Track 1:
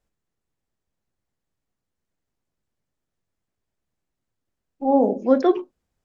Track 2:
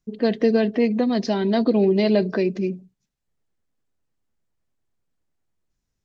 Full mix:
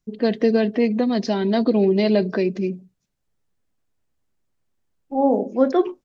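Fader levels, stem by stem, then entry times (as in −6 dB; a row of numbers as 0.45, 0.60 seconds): −0.5, +0.5 decibels; 0.30, 0.00 seconds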